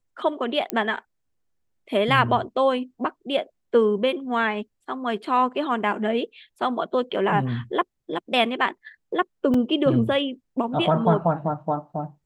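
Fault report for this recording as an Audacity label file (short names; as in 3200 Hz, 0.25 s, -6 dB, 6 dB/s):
0.700000	0.700000	pop -10 dBFS
9.540000	9.540000	gap 3.4 ms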